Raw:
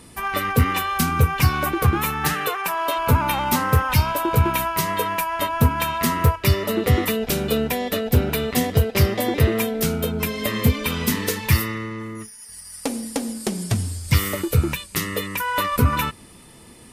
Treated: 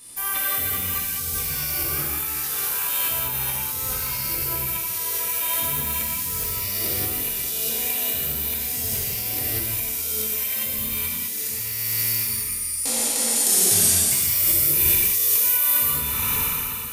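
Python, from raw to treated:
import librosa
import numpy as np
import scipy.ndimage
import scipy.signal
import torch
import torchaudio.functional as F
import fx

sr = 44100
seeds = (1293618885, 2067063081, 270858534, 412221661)

y = fx.spec_trails(x, sr, decay_s=2.73)
y = scipy.signal.lfilter([1.0, -0.9], [1.0], y)
y = fx.over_compress(y, sr, threshold_db=-28.0, ratio=-1.0)
y = fx.high_shelf(y, sr, hz=6600.0, db=7.5, at=(13.36, 15.81))
y = fx.rev_gated(y, sr, seeds[0], gate_ms=230, shape='flat', drr_db=-4.5)
y = F.gain(torch.from_numpy(y), -3.0).numpy()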